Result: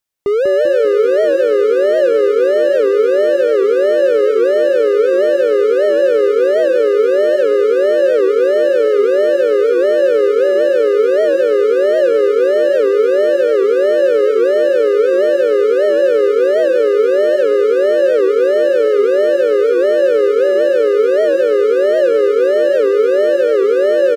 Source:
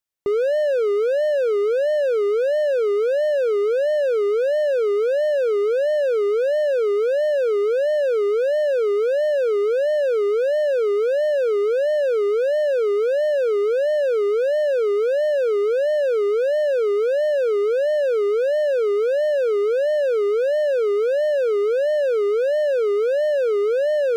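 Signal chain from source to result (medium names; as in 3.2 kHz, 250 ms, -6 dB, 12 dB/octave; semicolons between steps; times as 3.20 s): frequency-shifting echo 195 ms, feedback 50%, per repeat -31 Hz, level -5 dB; warped record 78 rpm, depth 100 cents; trim +6 dB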